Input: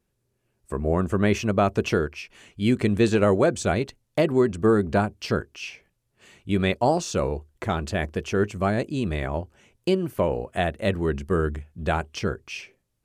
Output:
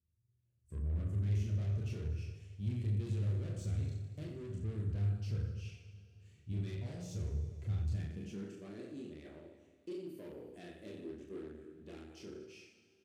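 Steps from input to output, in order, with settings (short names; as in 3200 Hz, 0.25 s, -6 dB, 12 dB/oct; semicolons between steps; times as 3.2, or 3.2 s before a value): chorus voices 6, 0.32 Hz, delay 27 ms, depth 1.9 ms; reverse bouncing-ball echo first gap 40 ms, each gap 1.25×, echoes 5; soft clip -26 dBFS, distortion -7 dB; passive tone stack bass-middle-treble 10-0-1; Schroeder reverb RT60 3.5 s, combs from 30 ms, DRR 13.5 dB; high-pass sweep 98 Hz -> 320 Hz, 7.91–8.62; gain +3 dB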